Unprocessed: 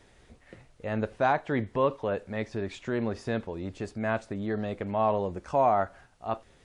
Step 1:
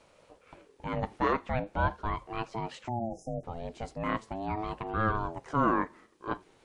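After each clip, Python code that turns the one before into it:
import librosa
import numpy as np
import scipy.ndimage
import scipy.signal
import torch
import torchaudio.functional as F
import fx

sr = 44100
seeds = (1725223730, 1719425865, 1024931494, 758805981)

y = fx.spec_erase(x, sr, start_s=2.89, length_s=0.55, low_hz=400.0, high_hz=5400.0)
y = fx.ring_lfo(y, sr, carrier_hz=450.0, swing_pct=25, hz=0.41)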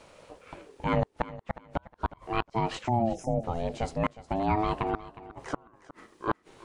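y = fx.gate_flip(x, sr, shuts_db=-21.0, range_db=-42)
y = fx.echo_feedback(y, sr, ms=362, feedback_pct=25, wet_db=-16.5)
y = y * librosa.db_to_amplitude(7.5)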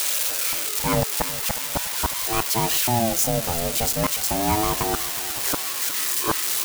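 y = x + 0.5 * 10.0 ** (-17.0 / 20.0) * np.diff(np.sign(x), prepend=np.sign(x[:1]))
y = y * librosa.db_to_amplitude(4.0)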